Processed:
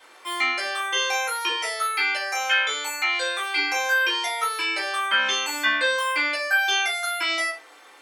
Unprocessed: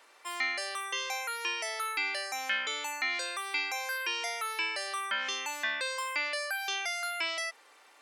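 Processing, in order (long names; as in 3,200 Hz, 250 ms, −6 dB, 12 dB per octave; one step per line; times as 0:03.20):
0:01.49–0:03.56: Chebyshev high-pass filter 420 Hz, order 3
convolution reverb RT60 0.40 s, pre-delay 3 ms, DRR −6.5 dB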